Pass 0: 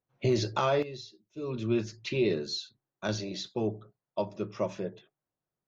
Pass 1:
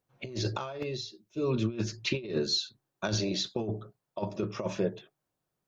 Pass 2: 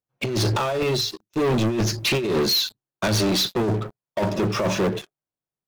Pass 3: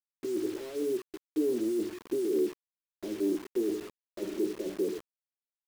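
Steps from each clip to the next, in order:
notch filter 2,000 Hz, Q 25; compressor whose output falls as the input rises −32 dBFS, ratio −0.5; level +2.5 dB
leveller curve on the samples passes 5; level −1.5 dB
flat-topped band-pass 340 Hz, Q 2.4; bit reduction 7 bits; level −3.5 dB

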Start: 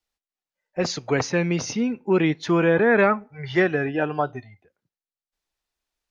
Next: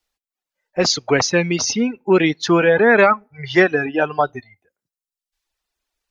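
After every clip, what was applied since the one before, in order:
parametric band 120 Hz −4.5 dB 1.9 octaves
reverb reduction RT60 1 s
dynamic equaliser 5,000 Hz, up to +6 dB, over −45 dBFS, Q 1.4
level +7 dB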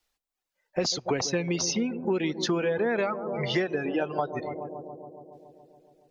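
dynamic equaliser 1,500 Hz, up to −6 dB, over −28 dBFS, Q 0.98
bucket-brigade delay 140 ms, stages 1,024, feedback 75%, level −15 dB
downward compressor 5 to 1, threshold −25 dBFS, peak gain reduction 14 dB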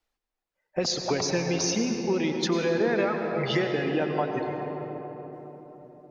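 on a send at −4 dB: convolution reverb RT60 4.0 s, pre-delay 88 ms
on the sum: one half of a high-frequency compander decoder only

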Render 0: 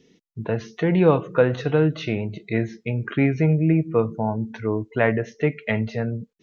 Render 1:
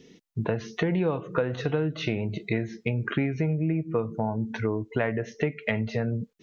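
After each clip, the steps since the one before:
downward compressor 6 to 1, threshold −28 dBFS, peak gain reduction 16 dB
level +4.5 dB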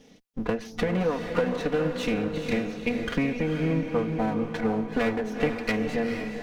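lower of the sound and its delayed copy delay 4.1 ms
feedback delay with all-pass diffusion 459 ms, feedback 46%, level −5.5 dB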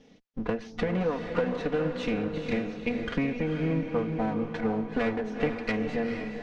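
high-frequency loss of the air 100 metres
level −2 dB

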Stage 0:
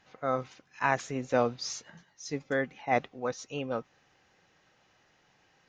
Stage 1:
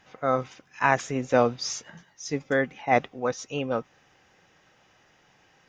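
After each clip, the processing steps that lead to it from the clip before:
notch filter 4,200 Hz, Q 9.4
level +5.5 dB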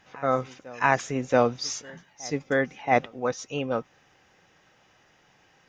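backwards echo 678 ms −22 dB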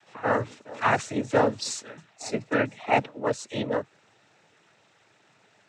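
cochlear-implant simulation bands 12

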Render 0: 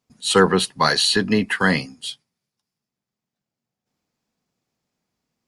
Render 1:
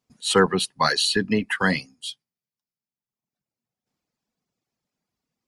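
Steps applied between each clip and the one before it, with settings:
reverb reduction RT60 1.2 s
level −2.5 dB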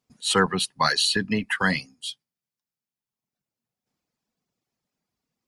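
dynamic equaliser 390 Hz, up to −6 dB, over −32 dBFS, Q 0.94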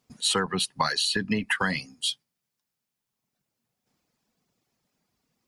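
downward compressor 12 to 1, threshold −29 dBFS, peak gain reduction 15.5 dB
level +7 dB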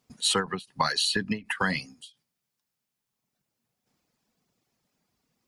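every ending faded ahead of time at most 240 dB per second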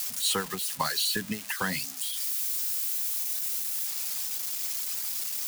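spike at every zero crossing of −21 dBFS
level −4 dB

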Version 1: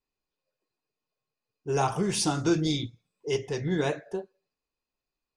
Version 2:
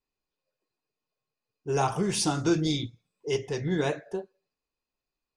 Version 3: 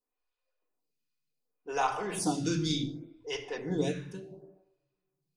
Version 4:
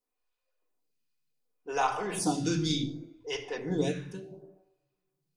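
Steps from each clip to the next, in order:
no processing that can be heard
low-shelf EQ 420 Hz −4.5 dB; rectangular room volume 3,600 cubic metres, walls furnished, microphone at 1.9 metres; phaser with staggered stages 0.68 Hz
tuned comb filter 250 Hz, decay 0.79 s, mix 40%; level +5.5 dB

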